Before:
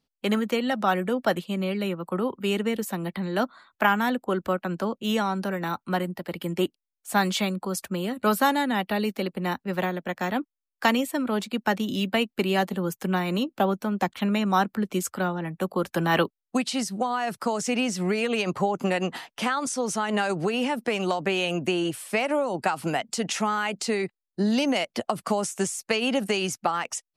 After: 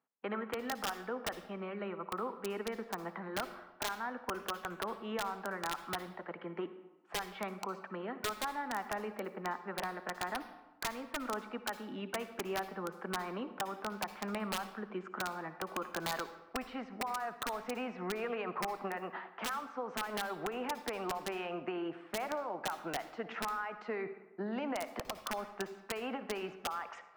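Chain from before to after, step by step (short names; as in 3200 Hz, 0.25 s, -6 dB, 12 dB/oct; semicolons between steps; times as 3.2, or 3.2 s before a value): LPF 1400 Hz 24 dB/oct; differentiator; reverse; upward compressor, threshold -57 dBFS; reverse; HPF 130 Hz 12 dB/oct; compressor 16:1, threshold -48 dBFS, peak gain reduction 15 dB; notch 550 Hz, Q 13; wrapped overs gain 43 dB; on a send: reverb RT60 1.1 s, pre-delay 53 ms, DRR 11 dB; on the sum: gain +15 dB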